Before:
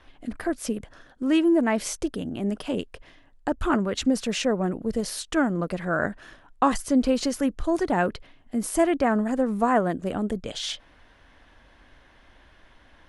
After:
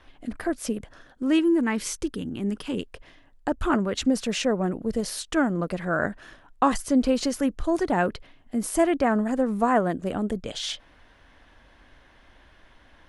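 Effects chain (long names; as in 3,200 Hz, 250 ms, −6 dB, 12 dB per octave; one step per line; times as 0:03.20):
0:01.39–0:02.81: parametric band 660 Hz −14.5 dB 0.46 octaves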